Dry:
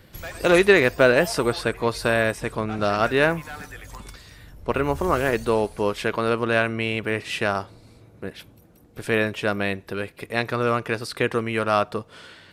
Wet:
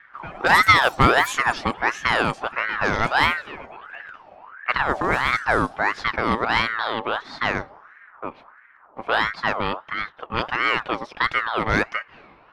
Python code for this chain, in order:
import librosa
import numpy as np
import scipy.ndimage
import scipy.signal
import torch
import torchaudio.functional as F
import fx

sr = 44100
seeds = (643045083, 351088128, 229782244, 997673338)

y = fx.dynamic_eq(x, sr, hz=1700.0, q=0.87, threshold_db=-34.0, ratio=4.0, max_db=-5)
y = fx.env_lowpass(y, sr, base_hz=780.0, full_db=-15.5)
y = fx.ring_lfo(y, sr, carrier_hz=1200.0, swing_pct=45, hz=1.5)
y = F.gain(torch.from_numpy(y), 4.5).numpy()